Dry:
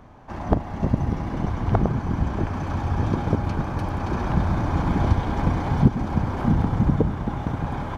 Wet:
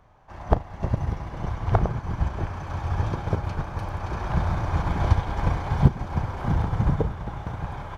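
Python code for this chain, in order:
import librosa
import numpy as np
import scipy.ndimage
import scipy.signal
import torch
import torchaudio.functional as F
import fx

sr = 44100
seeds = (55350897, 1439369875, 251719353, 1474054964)

y = fx.peak_eq(x, sr, hz=250.0, db=-11.5, octaves=0.99)
y = fx.doubler(y, sr, ms=36.0, db=-12.5)
y = fx.upward_expand(y, sr, threshold_db=-36.0, expansion=1.5)
y = y * librosa.db_to_amplitude(3.5)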